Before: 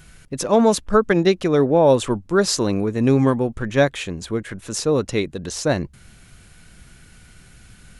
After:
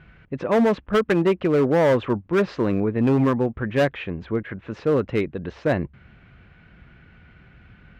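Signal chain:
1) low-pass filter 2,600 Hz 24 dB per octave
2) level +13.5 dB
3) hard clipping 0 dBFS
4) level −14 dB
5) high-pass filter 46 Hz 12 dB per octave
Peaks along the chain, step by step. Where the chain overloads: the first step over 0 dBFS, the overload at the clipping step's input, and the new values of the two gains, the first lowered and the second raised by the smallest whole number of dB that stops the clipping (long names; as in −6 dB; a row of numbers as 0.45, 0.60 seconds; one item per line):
−4.0, +9.5, 0.0, −14.0, −11.5 dBFS
step 2, 9.5 dB
step 2 +3.5 dB, step 4 −4 dB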